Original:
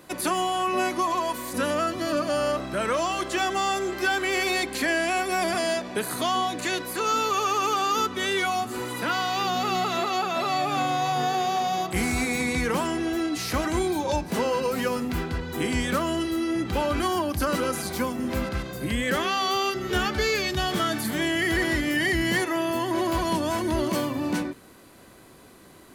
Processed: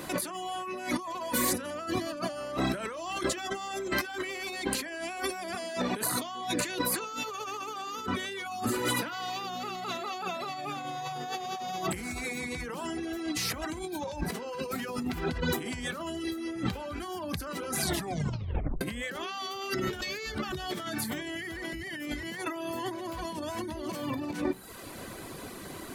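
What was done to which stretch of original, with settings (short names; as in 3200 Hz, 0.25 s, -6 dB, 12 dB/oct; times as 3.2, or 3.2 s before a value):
17.83 tape stop 0.98 s
20.01–20.52 reverse
21.73–22.23 reverse
whole clip: de-hum 63.41 Hz, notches 26; reverb removal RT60 0.65 s; negative-ratio compressor -37 dBFS, ratio -1; gain +2 dB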